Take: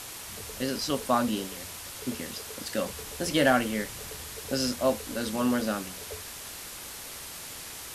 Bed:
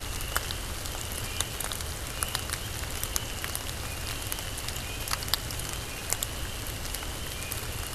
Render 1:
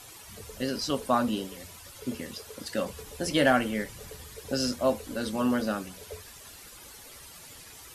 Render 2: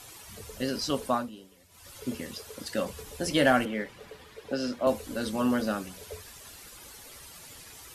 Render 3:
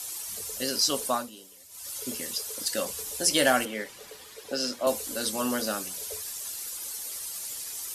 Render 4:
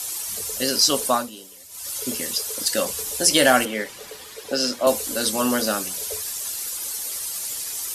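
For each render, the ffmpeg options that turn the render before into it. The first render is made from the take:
-af "afftdn=nr=11:nf=-42"
-filter_complex "[0:a]asettb=1/sr,asplit=3[s0][s1][s2];[s0]atrim=end=3.654[s3];[s1]atrim=start=3.65:end=4.87,asetpts=PTS-STARTPTS,afade=t=in:d=0.004:c=qsin,afade=t=out:st=1.216:d=0.004:c=qsin,acrossover=split=180 3900:gain=0.251 1 0.178[s4][s5][s6];[s4][s5][s6]amix=inputs=3:normalize=0[s7];[s2]atrim=start=4.866[s8];[s3][s7]acrossfade=d=0.004:c1=hsin:c2=qsin[s9];[s9][s8]acrossfade=d=0.004:c1=qsin:c2=hsin,asplit=3[s10][s11][s12];[s10]atrim=end=1.3,asetpts=PTS-STARTPTS,afade=t=out:st=1.06:d=0.24:silence=0.16788[s13];[s11]atrim=start=1.3:end=1.69,asetpts=PTS-STARTPTS,volume=0.168[s14];[s12]atrim=start=1.69,asetpts=PTS-STARTPTS,afade=t=in:d=0.24:silence=0.16788[s15];[s13][s14][s15]concat=n=3:v=0:a=1"
-af "bass=f=250:g=-9,treble=f=4000:g=14"
-af "volume=2.24,alimiter=limit=0.708:level=0:latency=1"

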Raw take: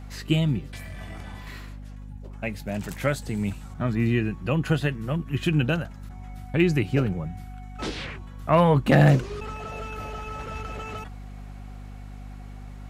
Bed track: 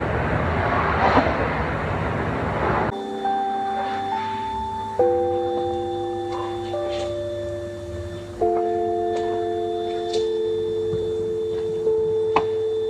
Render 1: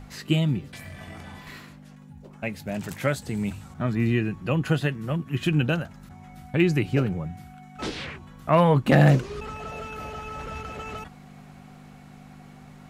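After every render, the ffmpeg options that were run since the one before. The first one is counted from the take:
-af "bandreject=f=50:t=h:w=6,bandreject=f=100:t=h:w=6"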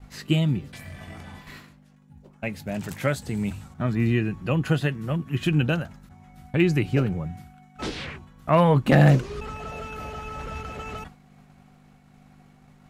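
-af "agate=range=0.0224:threshold=0.0112:ratio=3:detection=peak,lowshelf=f=68:g=5.5"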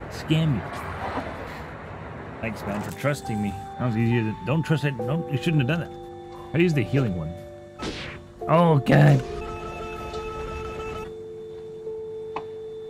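-filter_complex "[1:a]volume=0.224[s0];[0:a][s0]amix=inputs=2:normalize=0"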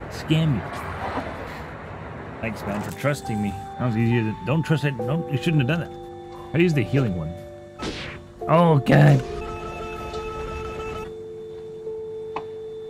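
-af "volume=1.19"

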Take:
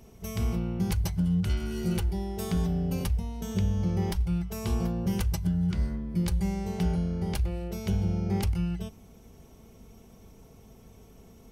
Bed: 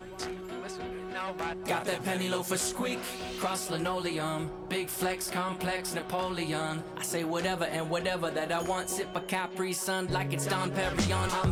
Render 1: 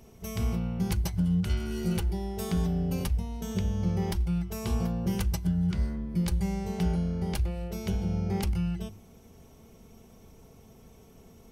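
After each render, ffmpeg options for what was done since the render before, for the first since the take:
-af "bandreject=f=50:t=h:w=4,bandreject=f=100:t=h:w=4,bandreject=f=150:t=h:w=4,bandreject=f=200:t=h:w=4,bandreject=f=250:t=h:w=4,bandreject=f=300:t=h:w=4,bandreject=f=350:t=h:w=4"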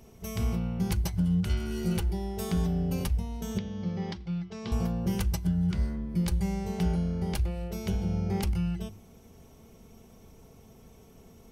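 -filter_complex "[0:a]asettb=1/sr,asplit=3[s0][s1][s2];[s0]atrim=end=3.584[s3];[s1]atrim=start=3.58:end=4.72,asetpts=PTS-STARTPTS,afade=t=in:d=0.004:c=qsin,afade=t=out:st=1.136:d=0.004:c=qsin,highpass=170,equalizer=f=370:t=q:w=4:g=-6,equalizer=f=650:t=q:w=4:g=-5,equalizer=f=930:t=q:w=4:g=-5,equalizer=f=1400:t=q:w=4:g=-4,equalizer=f=2600:t=q:w=4:g=-4,lowpass=f=4900:w=0.5412,lowpass=f=4900:w=1.3066[s4];[s2]atrim=start=4.716[s5];[s3][s4]acrossfade=d=0.004:c1=hsin:c2=qsin[s6];[s6][s5]acrossfade=d=0.004:c1=qsin:c2=hsin"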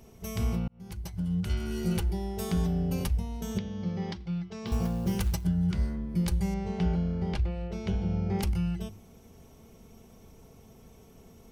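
-filter_complex "[0:a]asettb=1/sr,asplit=3[s0][s1][s2];[s0]atrim=end=4.664[s3];[s1]atrim=start=4.66:end=5.44,asetpts=PTS-STARTPTS,afade=t=in:d=0.004:c=qsin,afade=t=out:st=0.776:d=0.004:c=qsin,acrusher=bits=7:mode=log:mix=0:aa=0.000001[s4];[s2]atrim=start=5.436[s5];[s3][s4]acrossfade=d=0.004:c1=hsin:c2=qsin[s6];[s6][s5]acrossfade=d=0.004:c1=qsin:c2=hsin,asettb=1/sr,asplit=3[s7][s8][s9];[s7]atrim=end=6.544[s10];[s8]atrim=start=6.54:end=8.39,asetpts=PTS-STARTPTS,afade=t=in:d=0.004:c=qsin,afade=t=out:st=1.846:d=0.004:c=qsin,lowpass=4100[s11];[s9]atrim=start=8.386[s12];[s10][s11]acrossfade=d=0.004:c1=hsin:c2=qsin[s13];[s13][s12]acrossfade=d=0.004:c1=qsin:c2=hsin,asplit=2[s14][s15];[s14]atrim=end=0.68,asetpts=PTS-STARTPTS,afade=t=out:st=0.676:d=0.004:c=hsin[s16];[s15]atrim=start=0.68,asetpts=PTS-STARTPTS,afade=t=in:d=1[s17];[s16][s17]concat=n=2:v=0:a=1"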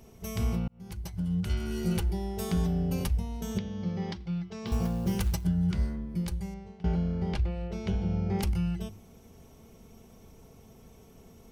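-filter_complex "[0:a]asplit=2[s0][s1];[s0]atrim=end=6.84,asetpts=PTS-STARTPTS,afade=t=out:st=5.81:d=1.03:silence=0.0794328[s2];[s1]atrim=start=6.84,asetpts=PTS-STARTPTS,afade=t=in:d=0.004:c=hsin:silence=0.0794328[s3];[s2][s3]concat=n=2:v=0:a=1"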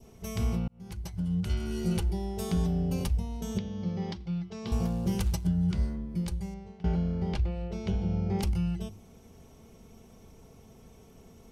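-af "lowpass=12000,adynamicequalizer=threshold=0.00112:dfrequency=1700:dqfactor=1.4:tfrequency=1700:tqfactor=1.4:attack=5:release=100:ratio=0.375:range=2:mode=cutabove:tftype=bell"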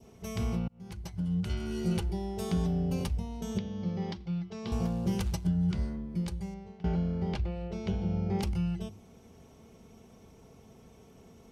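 -af "highpass=f=79:p=1,highshelf=f=8400:g=-7.5"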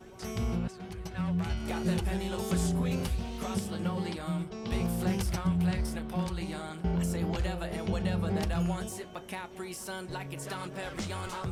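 -filter_complex "[1:a]volume=0.398[s0];[0:a][s0]amix=inputs=2:normalize=0"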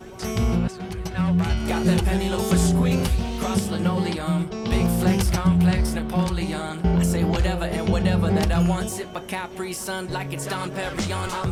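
-af "volume=3.16"

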